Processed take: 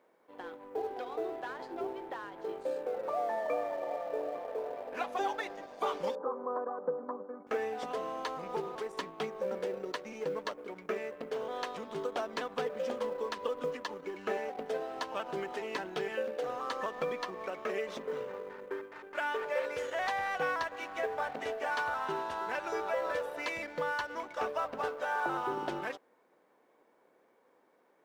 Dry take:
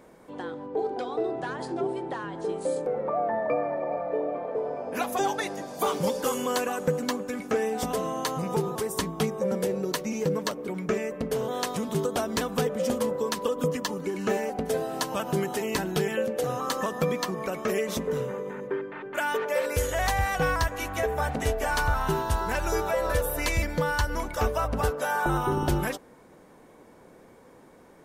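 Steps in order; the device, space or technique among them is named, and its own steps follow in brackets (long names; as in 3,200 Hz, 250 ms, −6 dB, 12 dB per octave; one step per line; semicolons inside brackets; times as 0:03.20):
phone line with mismatched companding (band-pass filter 390–3,400 Hz; mu-law and A-law mismatch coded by A)
0:06.15–0:07.47: elliptic band-pass filter 180–1,200 Hz, stop band 40 dB
level −4.5 dB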